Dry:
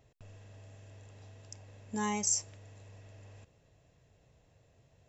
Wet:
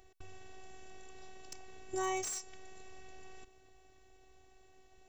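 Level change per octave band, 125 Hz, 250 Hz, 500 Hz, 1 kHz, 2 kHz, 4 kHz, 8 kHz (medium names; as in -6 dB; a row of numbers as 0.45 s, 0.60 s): -13.0 dB, -7.5 dB, +3.5 dB, -0.5 dB, -1.0 dB, -4.5 dB, no reading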